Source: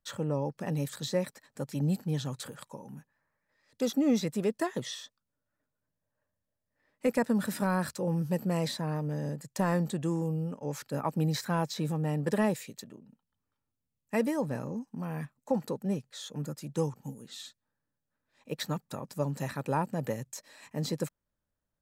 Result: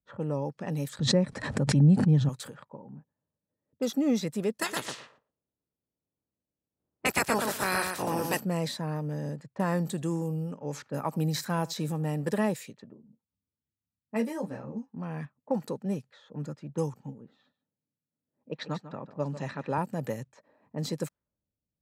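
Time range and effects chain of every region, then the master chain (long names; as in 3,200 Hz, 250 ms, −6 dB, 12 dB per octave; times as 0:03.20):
0:00.99–0:02.29: RIAA equalisation playback + bad sample-rate conversion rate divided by 2×, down none, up filtered + background raised ahead of every attack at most 53 dB per second
0:04.61–0:08.39: ceiling on every frequency bin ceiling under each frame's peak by 28 dB + repeating echo 117 ms, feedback 16%, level −5 dB
0:09.77–0:12.31: high-shelf EQ 5,800 Hz +5 dB + single-tap delay 77 ms −22.5 dB
0:12.94–0:14.95: double-tracking delay 30 ms −13.5 dB + string-ensemble chorus
0:17.36–0:19.78: band-pass filter 120–5,800 Hz + single-tap delay 147 ms −13 dB
whole clip: low-pass that shuts in the quiet parts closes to 350 Hz, open at −29 dBFS; high-pass filter 59 Hz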